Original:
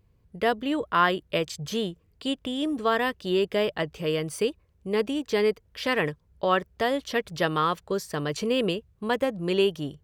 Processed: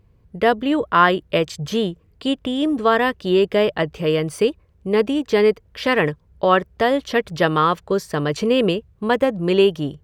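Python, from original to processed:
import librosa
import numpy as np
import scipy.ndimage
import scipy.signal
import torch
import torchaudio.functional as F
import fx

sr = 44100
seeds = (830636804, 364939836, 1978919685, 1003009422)

y = fx.high_shelf(x, sr, hz=3600.0, db=-7.5)
y = F.gain(torch.from_numpy(y), 8.0).numpy()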